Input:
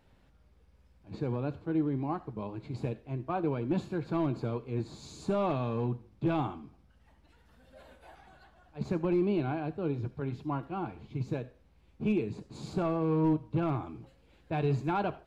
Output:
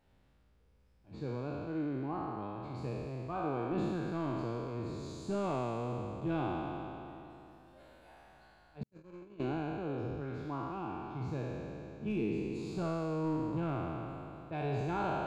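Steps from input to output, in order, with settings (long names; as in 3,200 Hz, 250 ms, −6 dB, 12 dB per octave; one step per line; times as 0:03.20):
peak hold with a decay on every bin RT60 3.00 s
0:08.83–0:09.40: noise gate −22 dBFS, range −52 dB
level −8.5 dB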